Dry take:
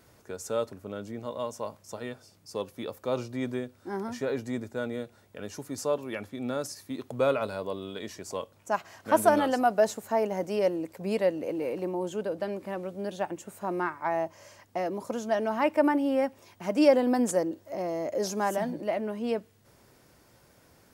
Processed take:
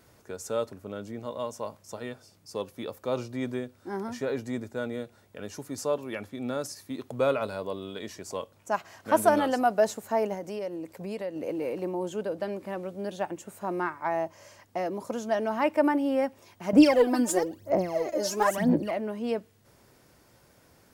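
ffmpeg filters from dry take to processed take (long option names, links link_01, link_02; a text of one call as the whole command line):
ffmpeg -i in.wav -filter_complex "[0:a]asettb=1/sr,asplit=3[link_01][link_02][link_03];[link_01]atrim=end=10.344[link_04];[link_02]atrim=start=10.34:end=11.36,asetpts=PTS-STARTPTS,afade=type=in:duration=0.004:curve=qsin,afade=type=out:start_time=1.016:duration=0.004:curve=qsin,acompressor=threshold=-34dB:ratio=2.5:attack=3.2:release=140:knee=1:detection=peak[link_05];[link_03]atrim=start=11.356[link_06];[link_04][link_05]acrossfade=duration=0.004:curve1=hsin:curve2=qsin[link_07];[link_07][link_06]acrossfade=duration=0.004:curve1=qsin:curve2=hsin,asettb=1/sr,asplit=3[link_08][link_09][link_10];[link_08]atrim=end=16.734[link_11];[link_09]atrim=start=16.73:end=18.91,asetpts=PTS-STARTPTS,afade=type=in:duration=0.004:curve=qsin,afade=type=out:start_time=2.176:duration=0.004:curve=qsin,aphaser=in_gain=1:out_gain=1:delay=3.4:decay=0.78:speed=1:type=sinusoidal[link_12];[link_10]atrim=start=18.906[link_13];[link_11][link_12]acrossfade=duration=0.004:curve1=hsin:curve2=qsin[link_14];[link_14][link_13]acrossfade=duration=0.004:curve1=qsin:curve2=hsin" out.wav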